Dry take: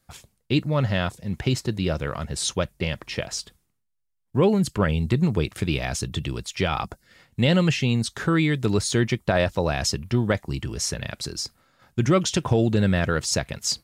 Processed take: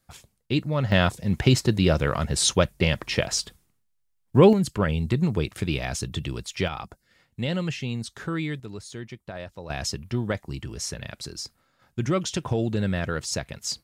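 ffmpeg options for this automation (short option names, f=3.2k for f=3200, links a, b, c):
-af "asetnsamples=n=441:p=0,asendcmd='0.92 volume volume 4.5dB;4.53 volume volume -2dB;6.68 volume volume -8dB;8.6 volume volume -16dB;9.7 volume volume -5dB',volume=-2.5dB"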